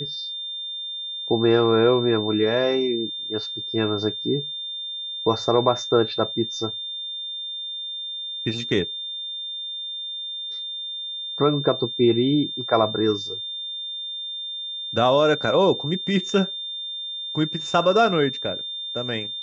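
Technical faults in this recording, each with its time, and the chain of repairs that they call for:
tone 3600 Hz -29 dBFS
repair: notch 3600 Hz, Q 30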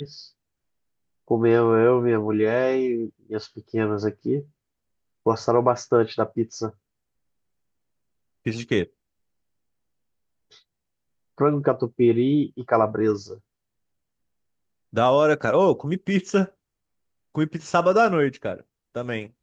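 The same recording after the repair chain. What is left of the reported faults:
none

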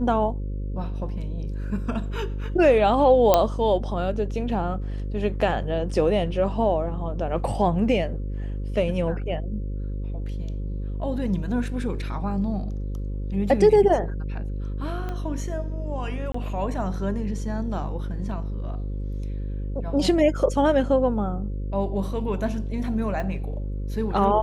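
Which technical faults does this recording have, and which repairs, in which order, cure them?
buzz 50 Hz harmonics 11 -29 dBFS
3.34 pop -3 dBFS
15.09 pop -20 dBFS
16.32–16.34 gap 24 ms
23.2 pop -19 dBFS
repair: de-click; de-hum 50 Hz, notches 11; interpolate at 16.32, 24 ms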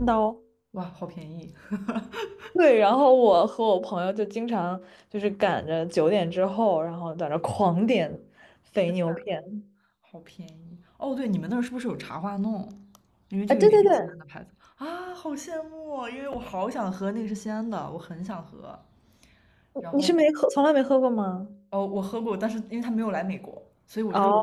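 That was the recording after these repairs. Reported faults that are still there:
15.09 pop
23.2 pop

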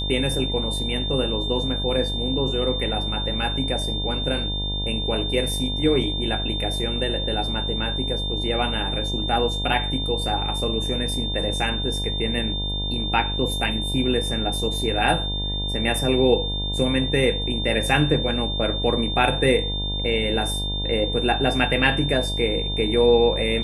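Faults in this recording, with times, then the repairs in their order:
buzz 50 Hz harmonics 20 -28 dBFS
tone 3600 Hz -27 dBFS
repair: de-hum 50 Hz, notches 20; notch 3600 Hz, Q 30

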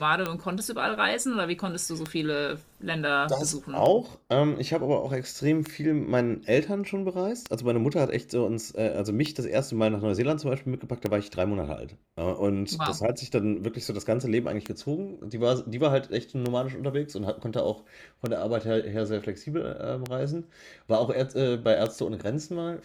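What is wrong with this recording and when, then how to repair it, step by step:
tick 33 1/3 rpm -14 dBFS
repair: de-click

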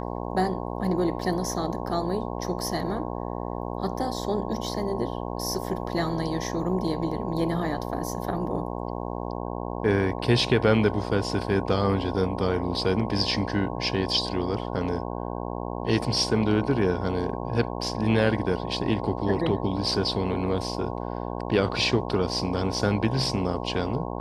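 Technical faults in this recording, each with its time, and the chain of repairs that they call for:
buzz 60 Hz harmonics 18 -32 dBFS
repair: de-hum 60 Hz, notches 18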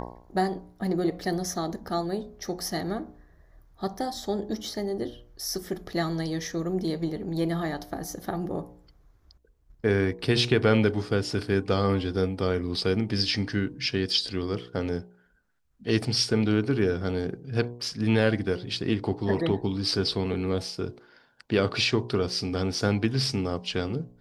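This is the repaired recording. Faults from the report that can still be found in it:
none

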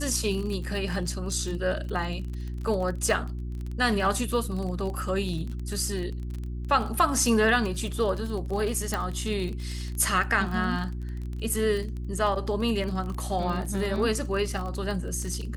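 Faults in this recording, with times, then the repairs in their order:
crackle 33/s -32 dBFS
hum 60 Hz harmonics 6 -33 dBFS
8.94 pop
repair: de-click; de-hum 60 Hz, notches 6

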